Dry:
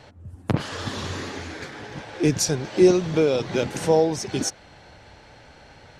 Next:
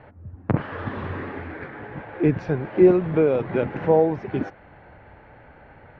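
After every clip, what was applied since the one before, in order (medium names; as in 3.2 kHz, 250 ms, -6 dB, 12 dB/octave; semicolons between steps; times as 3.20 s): low-pass 2.1 kHz 24 dB/octave; trim +1 dB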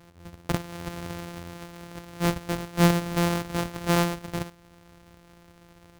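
sorted samples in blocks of 256 samples; trim -5.5 dB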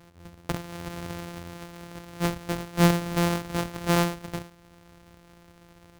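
endings held to a fixed fall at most 150 dB/s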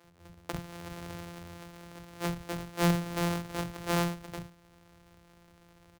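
bands offset in time highs, lows 40 ms, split 230 Hz; trim -5.5 dB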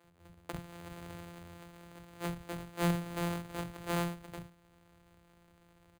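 careless resampling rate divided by 4×, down filtered, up hold; trim -4.5 dB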